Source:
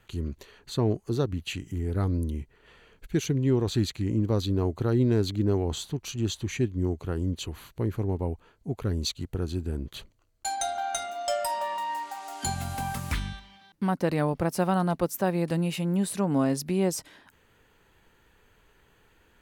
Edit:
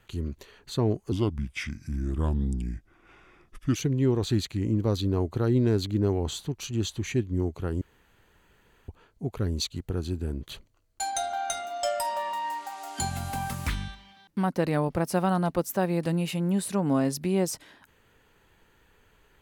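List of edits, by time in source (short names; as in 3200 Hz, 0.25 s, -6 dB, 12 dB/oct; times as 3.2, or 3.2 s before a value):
1.12–3.2 speed 79%
7.26–8.33 room tone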